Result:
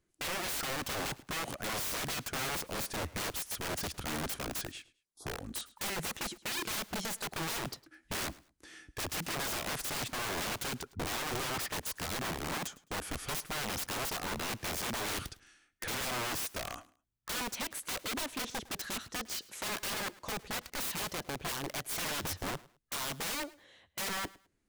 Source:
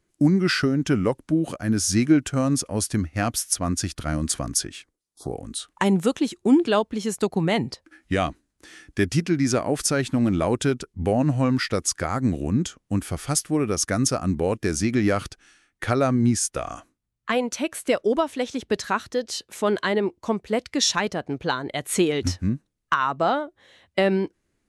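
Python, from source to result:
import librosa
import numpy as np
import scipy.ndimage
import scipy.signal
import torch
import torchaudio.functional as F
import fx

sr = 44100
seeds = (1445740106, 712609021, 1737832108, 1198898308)

y = (np.mod(10.0 ** (24.5 / 20.0) * x + 1.0, 2.0) - 1.0) / 10.0 ** (24.5 / 20.0)
y = fx.echo_feedback(y, sr, ms=106, feedback_pct=25, wet_db=-21)
y = F.gain(torch.from_numpy(y), -6.5).numpy()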